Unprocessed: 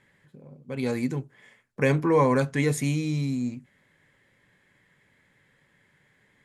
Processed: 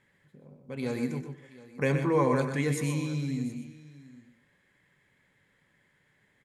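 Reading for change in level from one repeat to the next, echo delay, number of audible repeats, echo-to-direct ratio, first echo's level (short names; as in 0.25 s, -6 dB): no steady repeat, 94 ms, 6, -6.0 dB, -14.5 dB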